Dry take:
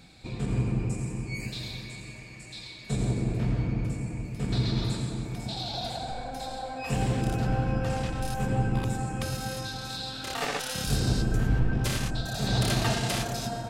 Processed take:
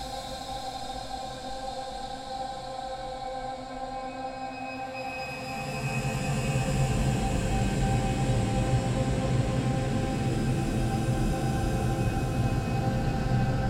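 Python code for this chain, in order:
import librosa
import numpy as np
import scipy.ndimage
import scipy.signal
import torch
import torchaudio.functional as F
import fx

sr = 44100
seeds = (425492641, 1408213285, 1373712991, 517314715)

y = fx.paulstretch(x, sr, seeds[0], factor=13.0, window_s=0.25, from_s=6.42)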